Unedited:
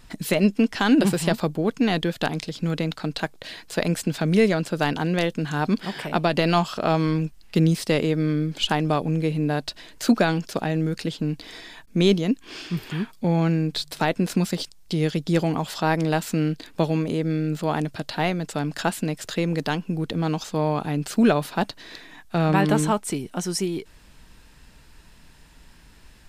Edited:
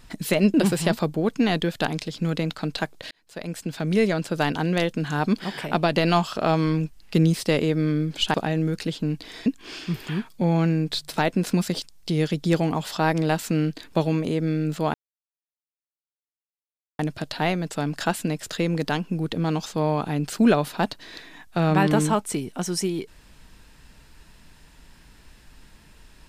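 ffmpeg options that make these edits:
ffmpeg -i in.wav -filter_complex "[0:a]asplit=6[link_01][link_02][link_03][link_04][link_05][link_06];[link_01]atrim=end=0.542[link_07];[link_02]atrim=start=0.948:end=3.52,asetpts=PTS-STARTPTS,afade=type=out:start_time=2.568:duration=0.004:curve=hsin[link_08];[link_03]atrim=start=3.52:end=8.752,asetpts=PTS-STARTPTS,afade=type=in:duration=1.6:curve=qsin[link_09];[link_04]atrim=start=10.528:end=11.652[link_10];[link_05]atrim=start=12.288:end=17.77,asetpts=PTS-STARTPTS,afade=type=out:start_time=5.478:duration=0.004:curve=hsin,apad=pad_dur=2.05[link_11];[link_06]atrim=start=17.77,asetpts=PTS-STARTPTS,afade=type=in:duration=0.004:curve=hsin[link_12];[link_08][link_09]concat=n=2:v=0:a=1[link_13];[link_07][link_13]acrossfade=duration=0.004:curve1=hsin:curve2=hsin[link_14];[link_14][link_10]acrossfade=duration=0.004:curve1=hsin:curve2=hsin[link_15];[link_11][link_12]concat=n=2:v=0:a=1[link_16];[link_15][link_16]acrossfade=duration=0.004:curve1=hsin:curve2=hsin" out.wav

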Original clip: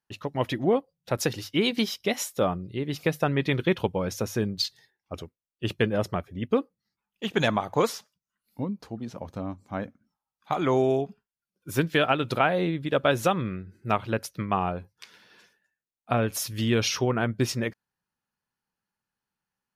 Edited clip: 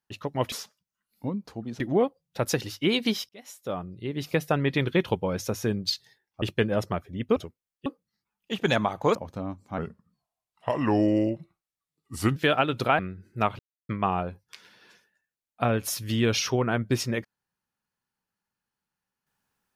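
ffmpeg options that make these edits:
ffmpeg -i in.wav -filter_complex "[0:a]asplit=13[link_01][link_02][link_03][link_04][link_05][link_06][link_07][link_08][link_09][link_10][link_11][link_12][link_13];[link_01]atrim=end=0.522[link_14];[link_02]atrim=start=7.868:end=9.152[link_15];[link_03]atrim=start=0.518:end=2.01,asetpts=PTS-STARTPTS,afade=type=out:start_time=1.488:duration=0.004:curve=hsin[link_16];[link_04]atrim=start=2.01:end=5.142,asetpts=PTS-STARTPTS,afade=type=in:duration=1[link_17];[link_05]atrim=start=5.638:end=6.582[link_18];[link_06]atrim=start=5.138:end=5.642[link_19];[link_07]atrim=start=6.578:end=7.872[link_20];[link_08]atrim=start=9.148:end=9.784[link_21];[link_09]atrim=start=9.78:end=11.87,asetpts=PTS-STARTPTS,asetrate=35721,aresample=44100[link_22];[link_10]atrim=start=11.866:end=12.502[link_23];[link_11]atrim=start=13.478:end=14.08,asetpts=PTS-STARTPTS,afade=type=out:start_time=0.598:duration=0.004:curve=hsin[link_24];[link_12]atrim=start=14.08:end=14.38,asetpts=PTS-STARTPTS,volume=0[link_25];[link_13]atrim=start=14.38,asetpts=PTS-STARTPTS,afade=type=in:duration=0.004:curve=hsin[link_26];[link_14][link_15]acrossfade=duration=0.004:curve1=hsin:curve2=hsin[link_27];[link_16][link_17]concat=n=2:v=0:a=1[link_28];[link_27][link_28]acrossfade=duration=0.004:curve1=hsin:curve2=hsin[link_29];[link_29][link_18]acrossfade=duration=0.004:curve1=hsin:curve2=hsin[link_30];[link_30][link_19]acrossfade=duration=0.004:curve1=hsin:curve2=hsin[link_31];[link_31][link_20]acrossfade=duration=0.004:curve1=hsin:curve2=hsin[link_32];[link_32][link_21]acrossfade=duration=0.004:curve1=hsin:curve2=hsin[link_33];[link_33][link_22]acrossfade=duration=0.004:curve1=hsin:curve2=hsin[link_34];[link_34][link_23]acrossfade=duration=0.004:curve1=hsin:curve2=hsin[link_35];[link_24][link_25][link_26]concat=n=3:v=0:a=1[link_36];[link_35][link_36]acrossfade=duration=0.004:curve1=hsin:curve2=hsin" out.wav

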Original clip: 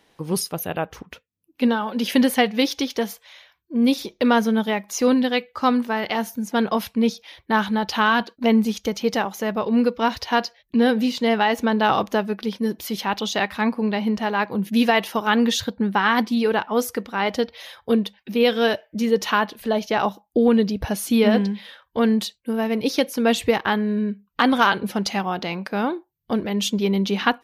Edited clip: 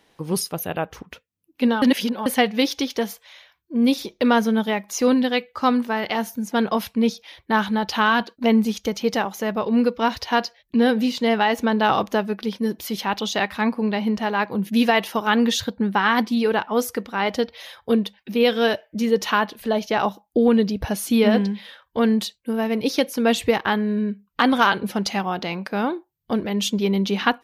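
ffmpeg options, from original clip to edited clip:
ffmpeg -i in.wav -filter_complex "[0:a]asplit=3[link_01][link_02][link_03];[link_01]atrim=end=1.822[link_04];[link_02]atrim=start=1.818:end=2.262,asetpts=PTS-STARTPTS,areverse[link_05];[link_03]atrim=start=2.258[link_06];[link_04][link_05]acrossfade=duration=0.004:curve1=hsin:curve2=hsin[link_07];[link_07][link_06]acrossfade=duration=0.004:curve1=hsin:curve2=hsin" out.wav

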